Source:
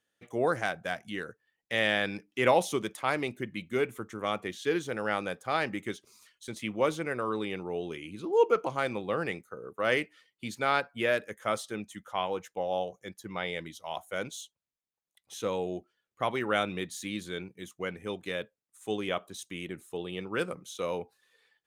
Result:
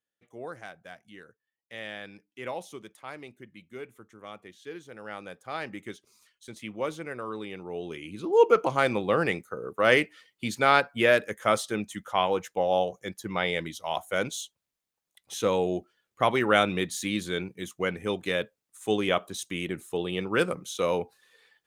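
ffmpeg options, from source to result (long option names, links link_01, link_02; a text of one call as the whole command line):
ffmpeg -i in.wav -af "volume=6.5dB,afade=type=in:start_time=4.87:duration=0.96:silence=0.398107,afade=type=in:start_time=7.56:duration=1.26:silence=0.298538" out.wav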